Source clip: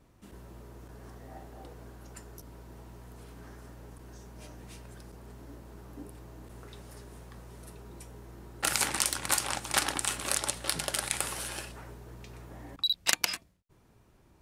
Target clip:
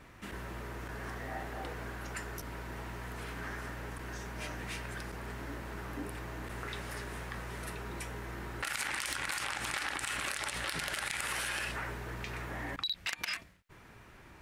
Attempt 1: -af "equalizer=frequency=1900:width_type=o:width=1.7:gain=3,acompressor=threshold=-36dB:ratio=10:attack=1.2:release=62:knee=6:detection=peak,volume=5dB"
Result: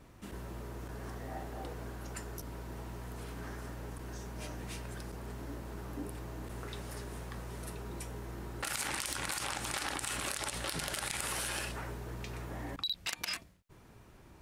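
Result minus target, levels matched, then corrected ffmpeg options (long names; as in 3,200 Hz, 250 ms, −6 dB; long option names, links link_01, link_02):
2,000 Hz band −4.0 dB
-af "equalizer=frequency=1900:width_type=o:width=1.7:gain=13,acompressor=threshold=-36dB:ratio=10:attack=1.2:release=62:knee=6:detection=peak,volume=5dB"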